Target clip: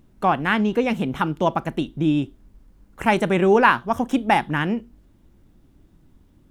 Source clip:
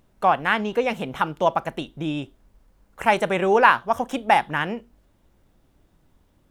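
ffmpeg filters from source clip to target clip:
-af "lowshelf=f=410:t=q:w=1.5:g=6.5"

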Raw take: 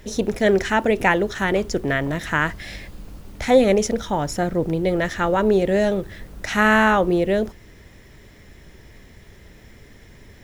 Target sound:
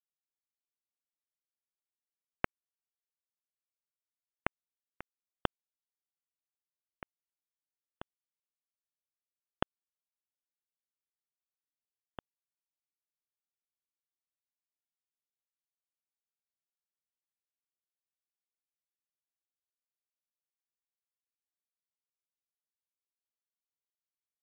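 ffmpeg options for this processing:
-filter_complex "[0:a]afftfilt=real='re*gte(hypot(re,im),0.112)':imag='im*gte(hypot(re,im),0.112)':win_size=1024:overlap=0.75,equalizer=f=160:w=1:g=6,acompressor=threshold=-27dB:ratio=5,alimiter=limit=-23.5dB:level=0:latency=1:release=154,acrossover=split=400|3000[a][b][c];[b]acompressor=threshold=-43dB:ratio=1.5[d];[a][d][c]amix=inputs=3:normalize=0,aresample=16000,acrusher=bits=3:mix=0:aa=0.000001,aresample=44100,aecho=1:1:1095:0.158,asetrate=18846,aresample=44100,volume=7.5dB"

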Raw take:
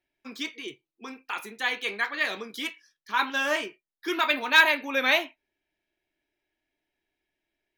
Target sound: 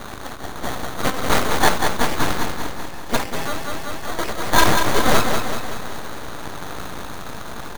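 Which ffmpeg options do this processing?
-filter_complex "[0:a]aeval=exprs='val(0)+0.5*0.075*sgn(val(0))':c=same,highpass=f=390:w=0.5412,highpass=f=390:w=1.3066,equalizer=f=390:t=q:w=4:g=-4,equalizer=f=750:t=q:w=4:g=6,equalizer=f=2k:t=q:w=4:g=-4,lowpass=f=2.3k:w=0.5412,lowpass=f=2.3k:w=1.3066,asettb=1/sr,asplit=3[a][b][c];[a]atrim=end=0.634[d];[b]atrim=start=0.63:end=1.69,asetpts=PTS-STARTPTS,afade=t=in:d=0.004:c=qsin,afade=t=out:st=1.056:d=0.004:c=qsin,acontrast=28[e];[c]atrim=start=1.686[f];[d][e]acrossfade=d=0.004:c1=hsin:c2=qsin[g];[g][f]acrossfade=d=0.004:c1=qsin:c2=hsin,acrusher=samples=17:mix=1:aa=0.000001,flanger=delay=8.9:depth=4.6:regen=-71:speed=0.81:shape=triangular,aeval=exprs='0.251*(cos(1*acos(clip(val(0)/0.251,-1,1)))-cos(1*PI/2))+0.0224*(cos(5*acos(clip(val(0)/0.251,-1,1)))-cos(5*PI/2))+0.0631*(cos(7*acos(clip(val(0)/0.251,-1,1)))-cos(7*PI/2))+0.0891*(cos(8*acos(clip(val(0)/0.251,-1,1)))-cos(8*PI/2))':c=same,aecho=1:1:190|380|570|760|950|1140|1330:0.531|0.297|0.166|0.0932|0.0522|0.0292|0.0164,asettb=1/sr,asplit=3[h][i][j];[h]atrim=end=3.164[k];[i]atrim=start=3.16:end=4.53,asetpts=PTS-STARTPTS,afade=t=in:d=0.004:c=qsin,afade=t=out:st=1.366:d=0.004:c=qsin,acompressor=threshold=-24dB:ratio=6[l];[j]atrim=start=4.526[m];[k][l]acrossfade=d=0.004:c1=hsin:c2=qsin[n];[n][m]acrossfade=d=0.004:c1=qsin:c2=hsin,volume=5dB"

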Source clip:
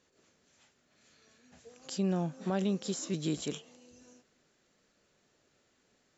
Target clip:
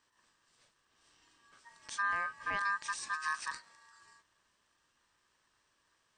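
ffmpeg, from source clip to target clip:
-af "equalizer=f=630:t=o:w=0.31:g=-11,aeval=exprs='val(0)*sin(2*PI*1400*n/s)':c=same"

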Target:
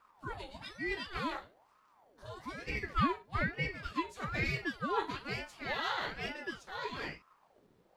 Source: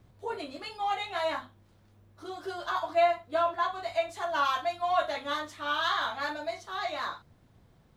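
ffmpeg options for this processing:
-filter_complex "[0:a]acrossover=split=130[a][b];[a]acrusher=samples=34:mix=1:aa=0.000001[c];[c][b]amix=inputs=2:normalize=0,aeval=exprs='val(0)*sin(2*PI*720*n/s+720*0.65/1.1*sin(2*PI*1.1*n/s))':c=same,volume=-3.5dB"

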